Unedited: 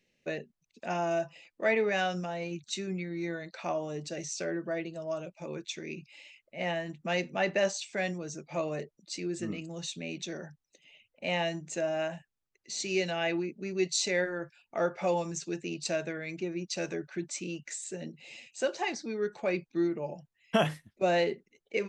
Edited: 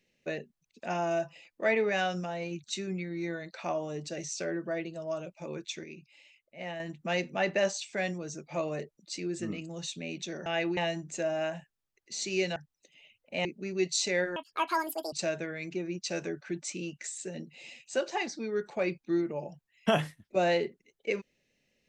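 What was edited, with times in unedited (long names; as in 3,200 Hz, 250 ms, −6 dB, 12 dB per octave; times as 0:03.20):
0:05.84–0:06.80: clip gain −6.5 dB
0:10.46–0:11.35: swap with 0:13.14–0:13.45
0:14.36–0:15.79: play speed 187%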